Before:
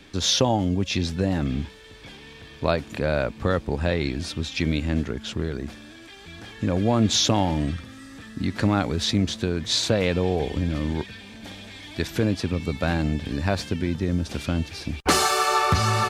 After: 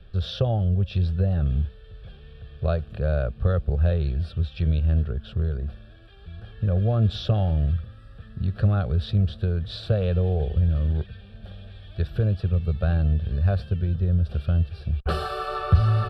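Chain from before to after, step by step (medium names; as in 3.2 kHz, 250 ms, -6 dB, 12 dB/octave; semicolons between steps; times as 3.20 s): RIAA curve playback; static phaser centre 1.4 kHz, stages 8; trim -5.5 dB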